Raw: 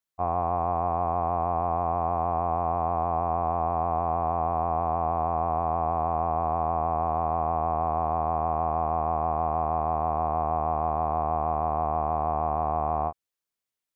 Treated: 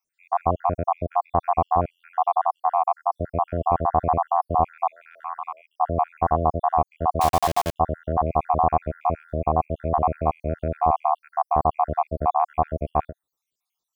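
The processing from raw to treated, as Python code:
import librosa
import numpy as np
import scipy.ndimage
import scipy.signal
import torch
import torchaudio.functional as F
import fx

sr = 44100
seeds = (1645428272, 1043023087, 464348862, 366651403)

y = fx.spec_dropout(x, sr, seeds[0], share_pct=67)
y = fx.highpass(y, sr, hz=1200.0, slope=24, at=(4.89, 5.78))
y = fx.quant_dither(y, sr, seeds[1], bits=6, dither='none', at=(7.21, 7.76))
y = fx.peak_eq(y, sr, hz=1900.0, db=fx.line((9.2, -6.0), (9.7, -14.0)), octaves=0.65, at=(9.2, 9.7), fade=0.02)
y = y * 10.0 ** (9.0 / 20.0)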